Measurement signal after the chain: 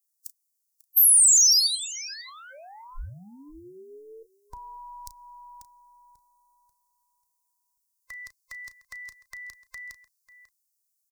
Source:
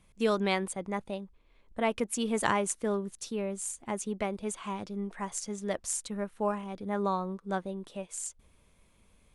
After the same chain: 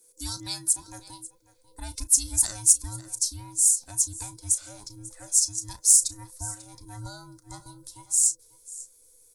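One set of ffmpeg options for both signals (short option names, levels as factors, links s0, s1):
-filter_complex "[0:a]afftfilt=real='real(if(between(b,1,1008),(2*floor((b-1)/24)+1)*24-b,b),0)':imag='imag(if(between(b,1,1008),(2*floor((b-1)/24)+1)*24-b,b),0)*if(between(b,1,1008),-1,1)':win_size=2048:overlap=0.75,adynamicequalizer=threshold=0.00355:dfrequency=4700:dqfactor=1.5:tfrequency=4700:tqfactor=1.5:attack=5:release=100:ratio=0.375:range=3:mode=boostabove:tftype=bell,asplit=2[s0][s1];[s1]adelay=34,volume=0.211[s2];[s0][s2]amix=inputs=2:normalize=0,aecho=1:1:543:0.106,asubboost=boost=6:cutoff=86,acrossover=split=350|3000[s3][s4][s5];[s4]acompressor=threshold=0.0251:ratio=6[s6];[s3][s6][s5]amix=inputs=3:normalize=0,aexciter=amount=13.4:drive=8.1:freq=4600,volume=0.282"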